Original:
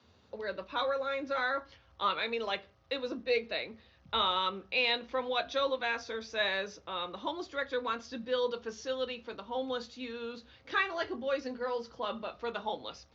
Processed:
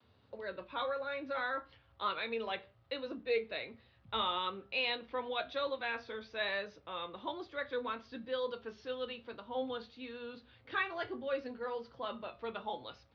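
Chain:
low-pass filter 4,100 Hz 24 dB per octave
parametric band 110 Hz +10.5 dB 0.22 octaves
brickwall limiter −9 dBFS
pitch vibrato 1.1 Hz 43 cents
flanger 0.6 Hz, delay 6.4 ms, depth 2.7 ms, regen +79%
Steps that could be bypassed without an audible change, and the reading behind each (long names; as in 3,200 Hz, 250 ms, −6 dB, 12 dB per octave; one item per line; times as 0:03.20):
brickwall limiter −9 dBFS: peak of its input −17.0 dBFS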